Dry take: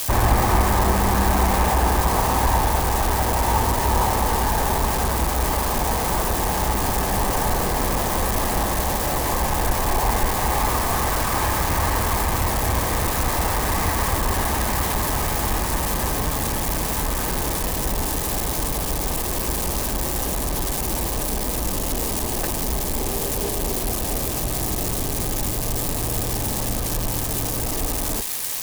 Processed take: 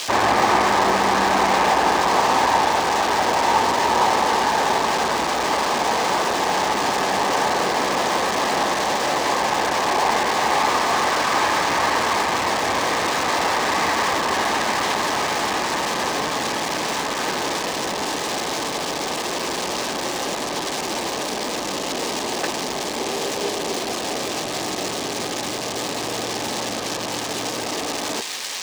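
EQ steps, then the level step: high-pass 290 Hz 12 dB/octave; distance through air 150 m; treble shelf 2.6 kHz +10 dB; +4.0 dB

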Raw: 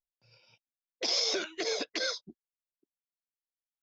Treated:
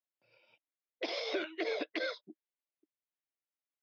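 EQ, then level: cabinet simulation 260–3600 Hz, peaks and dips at 310 Hz +8 dB, 610 Hz +6 dB, 2.1 kHz +4 dB; -3.5 dB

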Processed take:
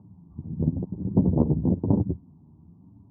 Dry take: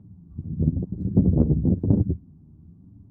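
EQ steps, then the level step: high-pass 130 Hz 6 dB/octave; resonant low-pass 960 Hz, resonance Q 4.9; distance through air 430 m; 0.0 dB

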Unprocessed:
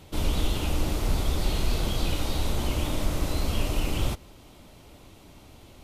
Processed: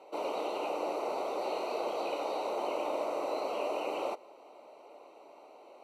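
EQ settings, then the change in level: boxcar filter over 26 samples; high-pass 490 Hz 24 dB/octave; +8.0 dB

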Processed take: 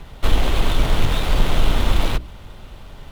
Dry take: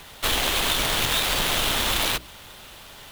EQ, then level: tilt EQ -3.5 dB/octave; band-stop 1.7 kHz, Q 21; 0.0 dB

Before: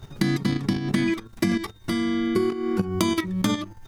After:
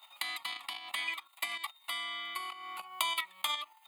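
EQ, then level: Bessel high-pass 1.2 kHz, order 4; static phaser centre 1.6 kHz, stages 6; +1.5 dB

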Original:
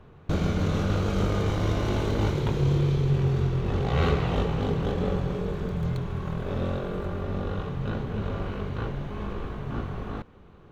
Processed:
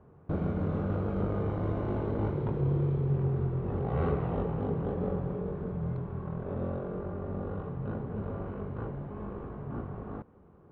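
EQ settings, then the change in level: high-pass 140 Hz 6 dB/octave; low-pass 1.1 kHz 12 dB/octave; bass shelf 180 Hz +3.5 dB; -4.0 dB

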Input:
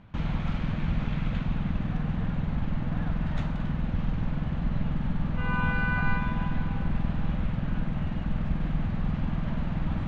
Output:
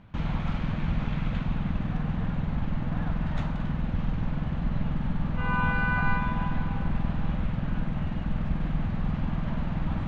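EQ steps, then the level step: dynamic bell 940 Hz, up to +4 dB, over -43 dBFS, Q 1.4; 0.0 dB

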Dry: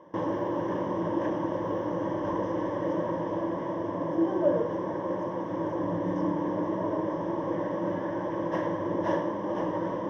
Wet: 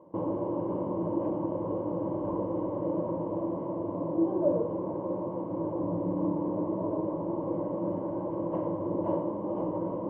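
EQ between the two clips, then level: boxcar filter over 25 samples; distance through air 120 m; 0.0 dB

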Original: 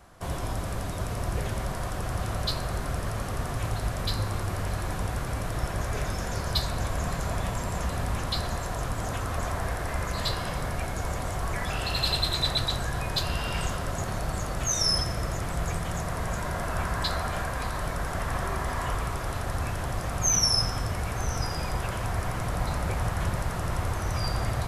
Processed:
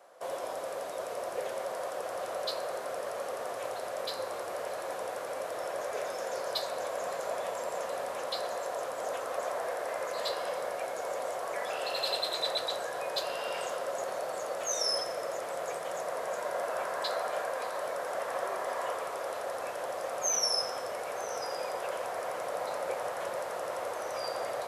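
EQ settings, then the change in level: resonant high-pass 530 Hz, resonance Q 4.1; -6.0 dB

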